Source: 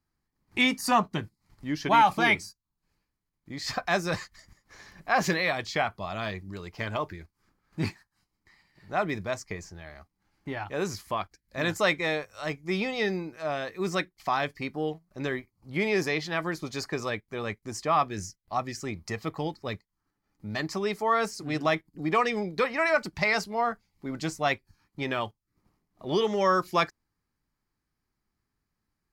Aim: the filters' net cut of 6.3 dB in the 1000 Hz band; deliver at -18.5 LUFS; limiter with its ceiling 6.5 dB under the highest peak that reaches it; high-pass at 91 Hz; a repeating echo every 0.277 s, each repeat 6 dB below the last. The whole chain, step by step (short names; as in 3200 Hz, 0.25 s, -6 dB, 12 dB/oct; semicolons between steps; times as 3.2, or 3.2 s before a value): HPF 91 Hz; bell 1000 Hz -8.5 dB; limiter -19.5 dBFS; feedback echo 0.277 s, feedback 50%, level -6 dB; gain +13.5 dB